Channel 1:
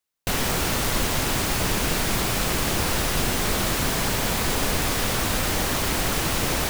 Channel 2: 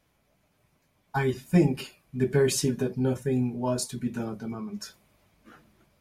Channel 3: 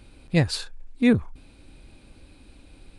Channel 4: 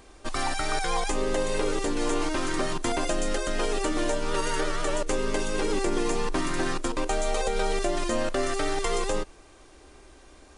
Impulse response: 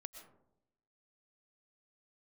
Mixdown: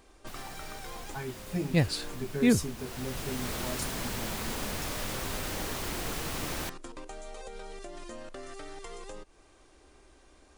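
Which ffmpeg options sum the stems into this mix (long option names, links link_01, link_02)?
-filter_complex "[0:a]volume=-11.5dB,afade=type=in:start_time=2.75:duration=0.78:silence=0.266073[link_01];[1:a]highshelf=frequency=5800:gain=9,volume=-12dB,asplit=2[link_02][link_03];[2:a]adelay=1400,volume=-4.5dB[link_04];[3:a]acompressor=threshold=-32dB:ratio=10,volume=-7dB[link_05];[link_03]apad=whole_len=466269[link_06];[link_05][link_06]sidechaincompress=threshold=-48dB:ratio=8:attack=16:release=235[link_07];[link_01][link_02][link_04][link_07]amix=inputs=4:normalize=0"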